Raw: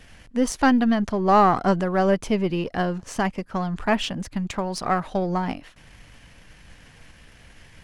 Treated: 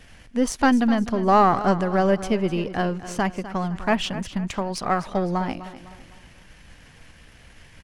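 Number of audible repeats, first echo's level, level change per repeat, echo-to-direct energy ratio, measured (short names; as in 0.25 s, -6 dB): 3, -14.0 dB, -8.0 dB, -13.0 dB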